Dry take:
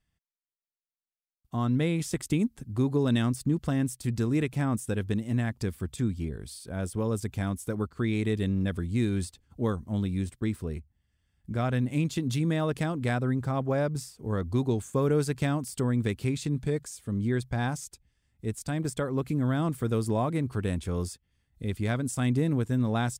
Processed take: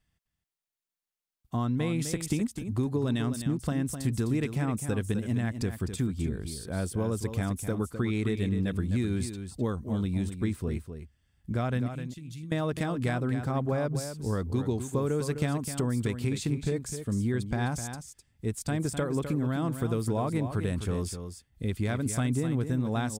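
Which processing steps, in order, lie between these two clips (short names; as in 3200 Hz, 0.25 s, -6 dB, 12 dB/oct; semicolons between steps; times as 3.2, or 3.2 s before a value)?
11.88–12.52 passive tone stack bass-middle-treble 6-0-2; compressor, threshold -27 dBFS, peak gain reduction 7.5 dB; echo 0.256 s -9 dB; gain +2.5 dB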